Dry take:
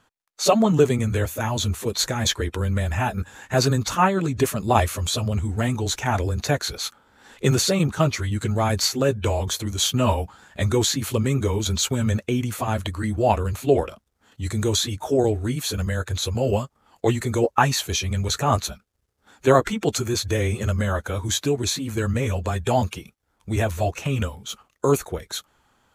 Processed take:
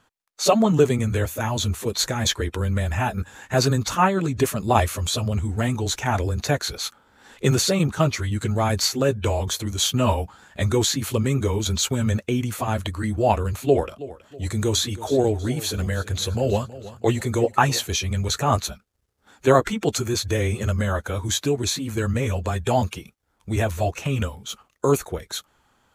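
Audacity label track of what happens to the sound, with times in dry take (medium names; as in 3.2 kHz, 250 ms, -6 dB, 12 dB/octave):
13.660000	17.880000	feedback delay 322 ms, feedback 40%, level -16.5 dB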